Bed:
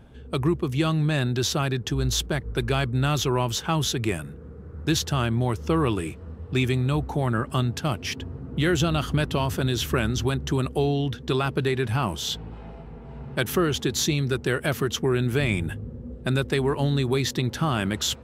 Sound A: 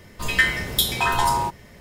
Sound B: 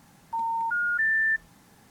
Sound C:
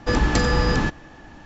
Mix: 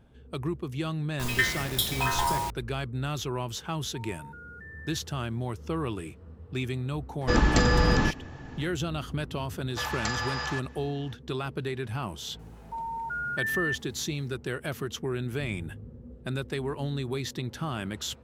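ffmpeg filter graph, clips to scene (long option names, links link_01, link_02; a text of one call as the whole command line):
ffmpeg -i bed.wav -i cue0.wav -i cue1.wav -i cue2.wav -filter_complex "[2:a]asplit=2[link_01][link_02];[3:a]asplit=2[link_03][link_04];[0:a]volume=-8.5dB[link_05];[1:a]acrusher=bits=4:mix=0:aa=0.000001[link_06];[link_01]acompressor=threshold=-30dB:ratio=6:attack=3.2:release=140:knee=1:detection=peak[link_07];[link_04]highpass=frequency=690:width=0.5412,highpass=frequency=690:width=1.3066[link_08];[link_06]atrim=end=1.8,asetpts=PTS-STARTPTS,volume=-7dB,afade=type=in:duration=0.004:curve=hsin,afade=type=out:start_time=1.796:duration=0.004:curve=hsin,adelay=1000[link_09];[link_07]atrim=end=1.9,asetpts=PTS-STARTPTS,volume=-15.5dB,afade=type=in:duration=0.004:curve=hsin,afade=type=out:start_time=1.896:duration=0.004:curve=hsin,adelay=3620[link_10];[link_03]atrim=end=1.45,asetpts=PTS-STARTPTS,volume=-2.5dB,afade=type=in:duration=0.004:curve=hsin,afade=type=out:start_time=1.446:duration=0.004:curve=hsin,adelay=7210[link_11];[link_08]atrim=end=1.45,asetpts=PTS-STARTPTS,volume=-6.5dB,afade=type=in:duration=0.004:curve=hsin,afade=type=out:start_time=1.446:duration=0.004:curve=hsin,adelay=427770S[link_12];[link_02]atrim=end=1.9,asetpts=PTS-STARTPTS,volume=-6.5dB,afade=type=in:duration=0.004:curve=hsin,afade=type=out:start_time=1.896:duration=0.004:curve=hsin,adelay=12390[link_13];[link_05][link_09][link_10][link_11][link_12][link_13]amix=inputs=6:normalize=0" out.wav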